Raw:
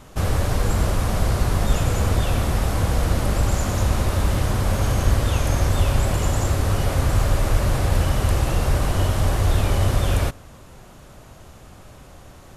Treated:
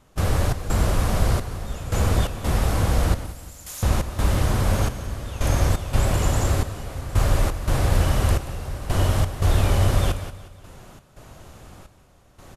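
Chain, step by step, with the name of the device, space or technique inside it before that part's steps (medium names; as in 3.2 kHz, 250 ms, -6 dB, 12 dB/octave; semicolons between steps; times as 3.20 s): 3.26–3.83 s: differentiator; trance gate with a delay (trance gate ".xx.xxxx.." 86 bpm -12 dB; feedback delay 181 ms, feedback 51%, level -16 dB)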